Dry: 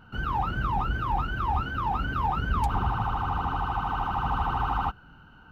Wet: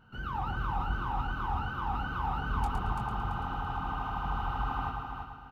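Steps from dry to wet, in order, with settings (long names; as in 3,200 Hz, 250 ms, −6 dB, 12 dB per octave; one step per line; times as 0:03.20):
double-tracking delay 23 ms −7.5 dB
on a send: echo machine with several playback heads 112 ms, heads first and third, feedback 48%, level −6 dB
on the sum: level −8 dB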